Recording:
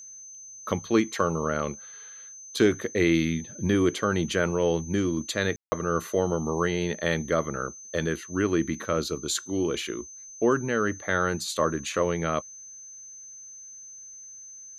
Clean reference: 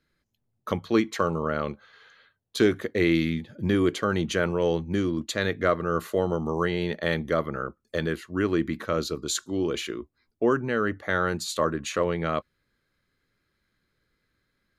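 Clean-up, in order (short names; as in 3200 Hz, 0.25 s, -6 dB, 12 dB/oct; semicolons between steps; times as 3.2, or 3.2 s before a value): notch 6200 Hz, Q 30; room tone fill 5.56–5.72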